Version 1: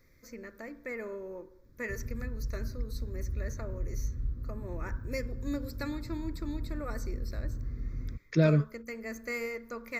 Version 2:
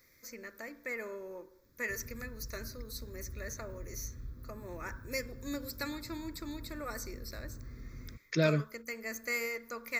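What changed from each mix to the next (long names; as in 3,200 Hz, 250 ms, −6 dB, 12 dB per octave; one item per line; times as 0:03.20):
master: add spectral tilt +2.5 dB per octave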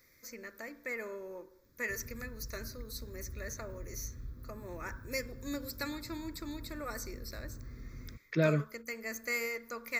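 second voice: add low-pass filter 2,700 Hz 12 dB per octave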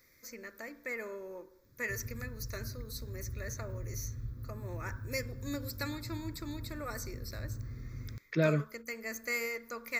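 background: add parametric band 110 Hz +13 dB 0.49 octaves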